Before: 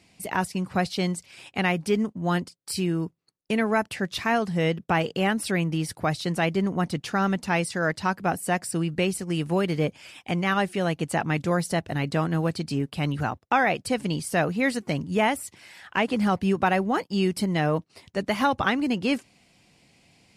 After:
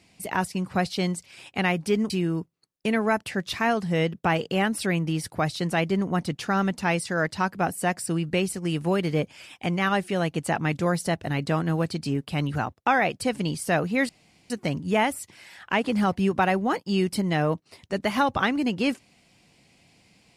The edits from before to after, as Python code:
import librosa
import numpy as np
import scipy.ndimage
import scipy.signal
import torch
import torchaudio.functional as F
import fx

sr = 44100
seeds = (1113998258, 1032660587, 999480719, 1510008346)

y = fx.edit(x, sr, fx.cut(start_s=2.1, length_s=0.65),
    fx.insert_room_tone(at_s=14.74, length_s=0.41), tone=tone)